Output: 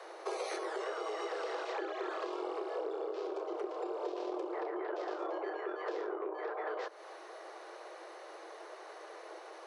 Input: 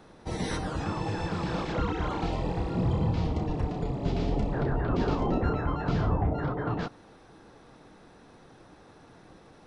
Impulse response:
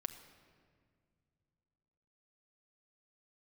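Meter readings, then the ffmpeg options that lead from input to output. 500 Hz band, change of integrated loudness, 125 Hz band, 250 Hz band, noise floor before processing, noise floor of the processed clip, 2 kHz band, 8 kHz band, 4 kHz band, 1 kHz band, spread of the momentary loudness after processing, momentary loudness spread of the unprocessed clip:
-2.5 dB, -10.0 dB, under -40 dB, -14.0 dB, -54 dBFS, -51 dBFS, -4.5 dB, no reading, -7.0 dB, -6.0 dB, 11 LU, 5 LU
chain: -af "aeval=exprs='0.178*(cos(1*acos(clip(val(0)/0.178,-1,1)))-cos(1*PI/2))+0.0501*(cos(2*acos(clip(val(0)/0.178,-1,1)))-cos(2*PI/2))':c=same,acompressor=threshold=0.0112:ratio=10,afreqshift=320,volume=1.58"

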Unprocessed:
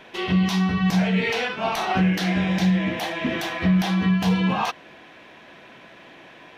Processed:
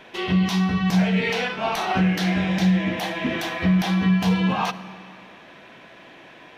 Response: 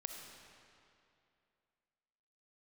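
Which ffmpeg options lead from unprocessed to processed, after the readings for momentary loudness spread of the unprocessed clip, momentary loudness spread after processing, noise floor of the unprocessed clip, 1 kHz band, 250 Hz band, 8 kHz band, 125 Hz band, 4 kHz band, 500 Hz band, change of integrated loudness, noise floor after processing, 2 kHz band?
6 LU, 6 LU, -47 dBFS, 0.0 dB, +0.5 dB, no reading, +0.5 dB, 0.0 dB, 0.0 dB, +0.5 dB, -47 dBFS, 0.0 dB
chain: -filter_complex "[0:a]asplit=2[s0][s1];[1:a]atrim=start_sample=2205[s2];[s1][s2]afir=irnorm=-1:irlink=0,volume=0.531[s3];[s0][s3]amix=inputs=2:normalize=0,volume=0.75"

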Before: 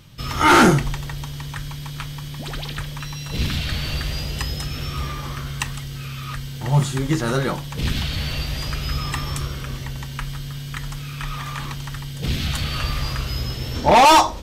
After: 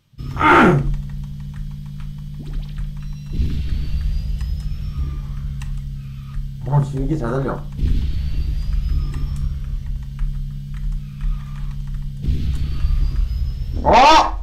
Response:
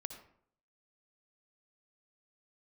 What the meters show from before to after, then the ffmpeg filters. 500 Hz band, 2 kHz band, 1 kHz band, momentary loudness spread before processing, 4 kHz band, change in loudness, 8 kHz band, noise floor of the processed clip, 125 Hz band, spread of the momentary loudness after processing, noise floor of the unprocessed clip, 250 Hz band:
+1.0 dB, 0.0 dB, +1.5 dB, 17 LU, -4.0 dB, +1.5 dB, no reading, -31 dBFS, +2.0 dB, 18 LU, -32 dBFS, +1.0 dB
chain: -filter_complex "[0:a]asubboost=boost=3.5:cutoff=54,afwtdn=0.0794,asplit=2[s0][s1];[1:a]atrim=start_sample=2205,asetrate=83790,aresample=44100[s2];[s1][s2]afir=irnorm=-1:irlink=0,volume=2[s3];[s0][s3]amix=inputs=2:normalize=0,volume=0.708"

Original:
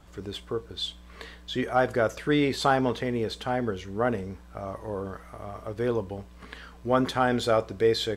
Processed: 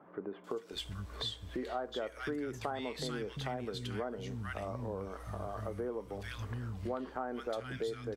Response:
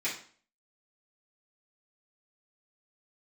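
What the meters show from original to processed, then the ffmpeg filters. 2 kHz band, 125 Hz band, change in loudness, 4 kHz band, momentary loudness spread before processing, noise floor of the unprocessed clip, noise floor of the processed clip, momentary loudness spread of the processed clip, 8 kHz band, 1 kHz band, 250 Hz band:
-12.5 dB, -7.0 dB, -12.5 dB, -9.0 dB, 17 LU, -49 dBFS, -53 dBFS, 4 LU, -9.5 dB, -13.0 dB, -12.0 dB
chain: -filter_complex "[0:a]acrossover=split=190|1600[s0][s1][s2];[s2]adelay=440[s3];[s0]adelay=720[s4];[s4][s1][s3]amix=inputs=3:normalize=0,acompressor=threshold=0.0112:ratio=5,volume=1.33"

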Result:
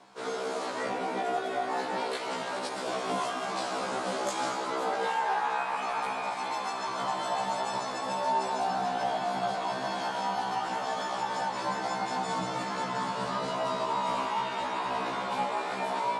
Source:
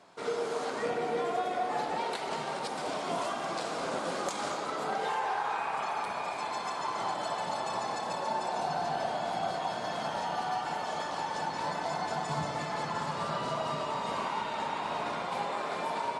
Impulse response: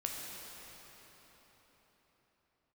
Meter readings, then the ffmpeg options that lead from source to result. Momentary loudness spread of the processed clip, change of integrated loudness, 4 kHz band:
4 LU, +2.0 dB, +2.0 dB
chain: -af "afreqshift=18,afftfilt=real='re*1.73*eq(mod(b,3),0)':imag='im*1.73*eq(mod(b,3),0)':win_size=2048:overlap=0.75,volume=1.68"

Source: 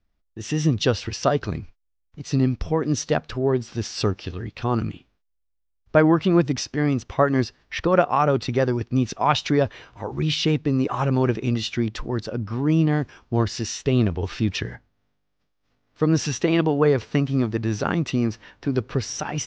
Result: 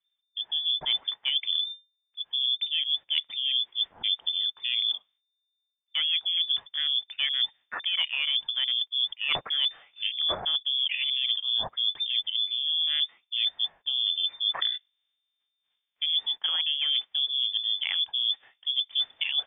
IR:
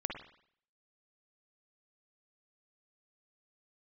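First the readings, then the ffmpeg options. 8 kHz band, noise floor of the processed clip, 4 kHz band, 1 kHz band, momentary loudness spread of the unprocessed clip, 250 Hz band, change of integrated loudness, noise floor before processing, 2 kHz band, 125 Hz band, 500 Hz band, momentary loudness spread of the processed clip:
no reading, -82 dBFS, +12.0 dB, -18.0 dB, 9 LU, under -35 dB, -3.0 dB, -72 dBFS, -4.5 dB, under -35 dB, -26.5 dB, 4 LU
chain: -af "afwtdn=0.0282,aeval=exprs='0.708*sin(PI/2*1.41*val(0)/0.708)':c=same,lowpass=f=3100:t=q:w=0.5098,lowpass=f=3100:t=q:w=0.6013,lowpass=f=3100:t=q:w=0.9,lowpass=f=3100:t=q:w=2.563,afreqshift=-3600,areverse,acompressor=threshold=0.0631:ratio=12,areverse"

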